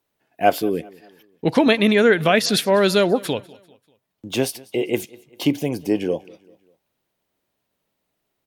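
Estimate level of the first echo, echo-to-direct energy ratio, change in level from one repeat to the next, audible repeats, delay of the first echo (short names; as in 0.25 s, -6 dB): -23.0 dB, -22.0 dB, -7.0 dB, 2, 0.196 s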